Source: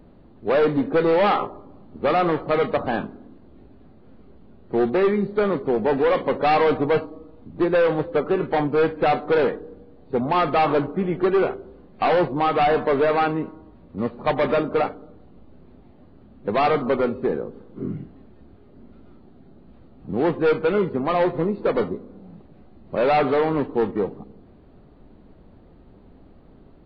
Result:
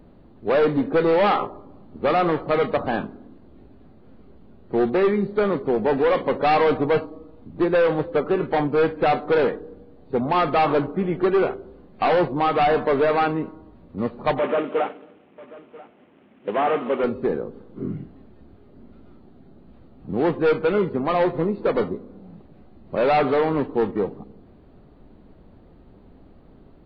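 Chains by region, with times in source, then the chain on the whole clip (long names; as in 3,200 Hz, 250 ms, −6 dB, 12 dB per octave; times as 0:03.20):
0:14.39–0:17.04: variable-slope delta modulation 16 kbit/s + high-pass filter 260 Hz + single-tap delay 989 ms −20.5 dB
whole clip: no processing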